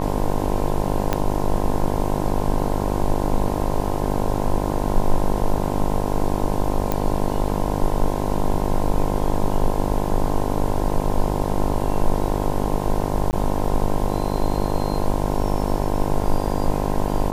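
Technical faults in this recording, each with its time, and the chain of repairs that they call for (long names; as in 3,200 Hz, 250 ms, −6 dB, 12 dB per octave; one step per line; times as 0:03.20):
mains buzz 50 Hz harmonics 21 −24 dBFS
0:01.13: click −6 dBFS
0:06.92: click
0:13.31–0:13.33: drop-out 19 ms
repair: click removal
hum removal 50 Hz, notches 21
repair the gap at 0:13.31, 19 ms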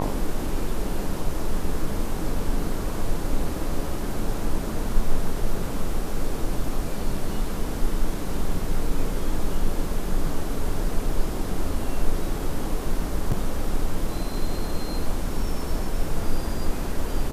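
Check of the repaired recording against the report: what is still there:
0:01.13: click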